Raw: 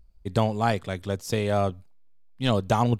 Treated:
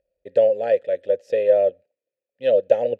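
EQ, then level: vowel filter e; Butterworth band-stop 1.1 kHz, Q 4.1; peaking EQ 560 Hz +12 dB 0.64 oct; +6.5 dB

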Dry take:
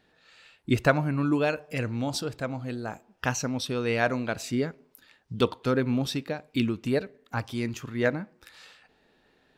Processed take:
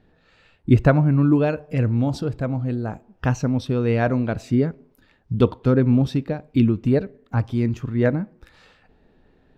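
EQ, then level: tilt EQ -3.5 dB/octave; +1.5 dB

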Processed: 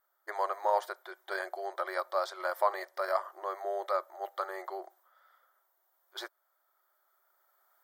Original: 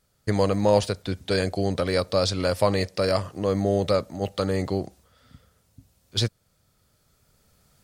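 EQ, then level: brick-wall FIR high-pass 350 Hz; high-order bell 6.6 kHz -16 dB; static phaser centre 1.1 kHz, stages 4; 0.0 dB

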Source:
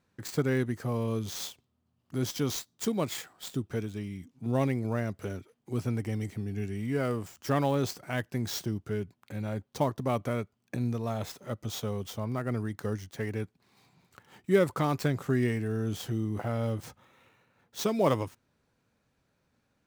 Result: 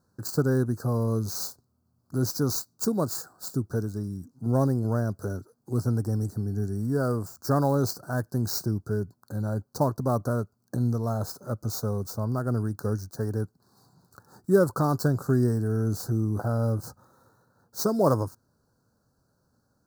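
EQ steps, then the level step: elliptic band-stop 1.5–4.4 kHz, stop band 40 dB; peaking EQ 110 Hz +3 dB; treble shelf 9.2 kHz +6 dB; +3.5 dB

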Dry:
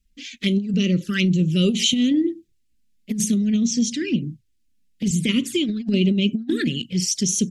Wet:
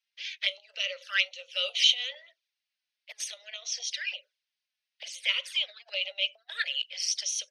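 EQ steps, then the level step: Savitzky-Golay filter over 15 samples; steep high-pass 560 Hz 96 dB/octave; band-stop 1.2 kHz, Q 19; 0.0 dB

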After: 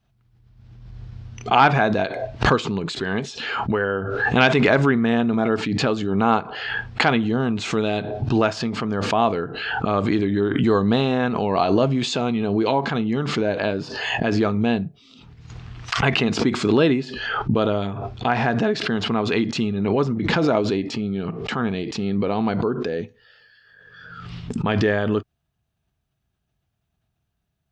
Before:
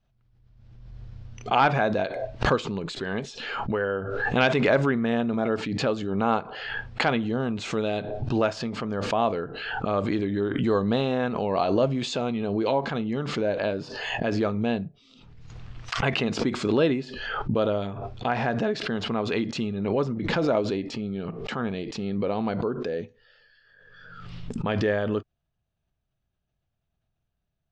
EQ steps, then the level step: high-pass 46 Hz; peaking EQ 550 Hz -6.5 dB 0.34 oct; +6.0 dB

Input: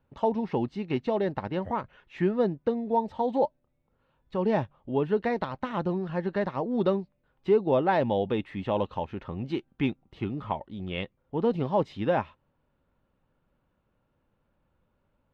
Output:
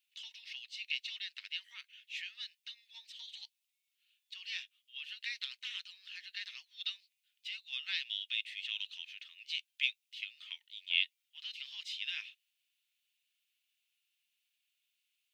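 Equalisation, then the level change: steep high-pass 2.6 kHz 36 dB/octave; +10.0 dB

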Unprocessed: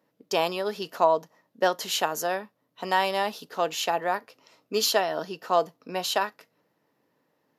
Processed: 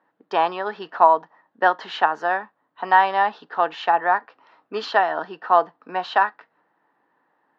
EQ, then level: cabinet simulation 170–3700 Hz, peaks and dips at 330 Hz +4 dB, 740 Hz +7 dB, 1.8 kHz +4 dB; high-order bell 1.2 kHz +10 dB 1.3 oct; -2.0 dB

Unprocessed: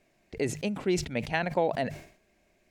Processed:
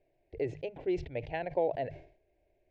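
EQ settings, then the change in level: static phaser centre 510 Hz, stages 4; dynamic bell 2.1 kHz, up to +4 dB, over -48 dBFS, Q 0.89; tape spacing loss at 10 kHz 43 dB; 0.0 dB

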